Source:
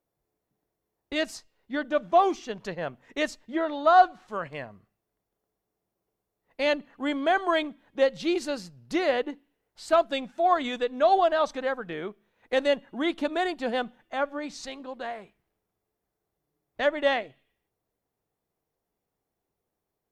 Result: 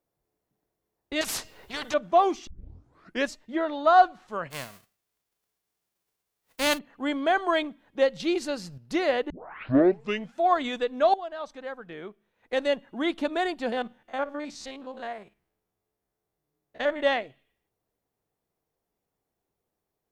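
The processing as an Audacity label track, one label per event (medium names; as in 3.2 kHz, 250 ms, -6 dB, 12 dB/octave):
1.210000	1.940000	spectrum-flattening compressor 4:1
2.470000	2.470000	tape start 0.83 s
4.500000	6.770000	formants flattened exponent 0.3
8.200000	8.780000	upward compressor, threshold -32 dBFS
9.300000	9.300000	tape start 1.07 s
11.140000	13.080000	fade in, from -16.5 dB
13.720000	17.020000	spectrogram pixelated in time every 50 ms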